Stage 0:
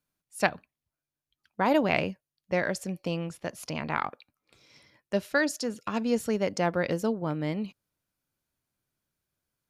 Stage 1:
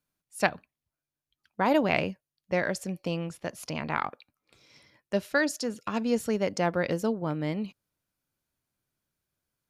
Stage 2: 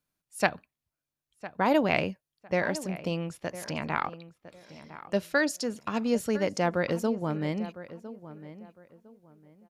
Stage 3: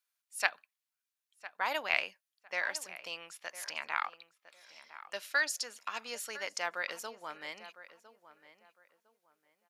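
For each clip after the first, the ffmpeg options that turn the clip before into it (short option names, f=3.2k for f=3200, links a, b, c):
-af anull
-filter_complex "[0:a]asplit=2[a][b];[b]adelay=1006,lowpass=f=2.1k:p=1,volume=-14.5dB,asplit=2[c][d];[d]adelay=1006,lowpass=f=2.1k:p=1,volume=0.26,asplit=2[e][f];[f]adelay=1006,lowpass=f=2.1k:p=1,volume=0.26[g];[a][c][e][g]amix=inputs=4:normalize=0"
-af "highpass=1.3k"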